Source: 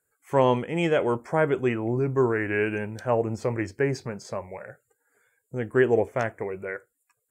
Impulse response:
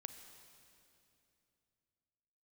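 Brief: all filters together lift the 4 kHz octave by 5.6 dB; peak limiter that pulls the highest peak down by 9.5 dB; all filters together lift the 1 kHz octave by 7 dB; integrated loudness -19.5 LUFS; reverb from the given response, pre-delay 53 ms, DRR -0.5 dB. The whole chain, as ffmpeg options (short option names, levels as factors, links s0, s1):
-filter_complex "[0:a]equalizer=f=1000:t=o:g=8,equalizer=f=4000:t=o:g=7.5,alimiter=limit=0.211:level=0:latency=1,asplit=2[s0][s1];[1:a]atrim=start_sample=2205,adelay=53[s2];[s1][s2]afir=irnorm=-1:irlink=0,volume=1.78[s3];[s0][s3]amix=inputs=2:normalize=0,volume=1.5"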